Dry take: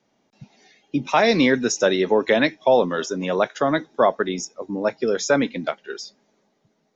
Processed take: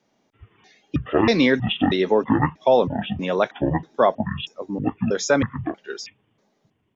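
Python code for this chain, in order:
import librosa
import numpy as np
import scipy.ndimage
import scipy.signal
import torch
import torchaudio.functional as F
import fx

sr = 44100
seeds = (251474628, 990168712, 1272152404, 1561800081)

y = fx.pitch_trill(x, sr, semitones=-12.0, every_ms=319)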